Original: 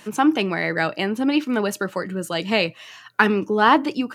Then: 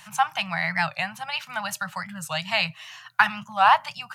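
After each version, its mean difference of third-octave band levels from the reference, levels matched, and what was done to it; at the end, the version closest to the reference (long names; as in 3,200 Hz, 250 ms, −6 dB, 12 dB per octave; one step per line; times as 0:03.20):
8.0 dB: elliptic band-stop filter 160–740 Hz, stop band 50 dB
wow of a warped record 45 rpm, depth 160 cents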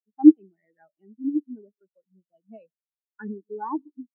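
21.5 dB: on a send: single-tap delay 147 ms −16.5 dB
on the sum: every bin expanded away from the loudest bin 4 to 1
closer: first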